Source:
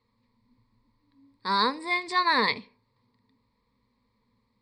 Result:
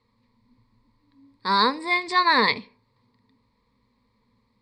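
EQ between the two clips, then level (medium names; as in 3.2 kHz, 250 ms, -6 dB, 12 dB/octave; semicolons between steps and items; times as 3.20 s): distance through air 64 m; treble shelf 7.3 kHz +7.5 dB; +4.5 dB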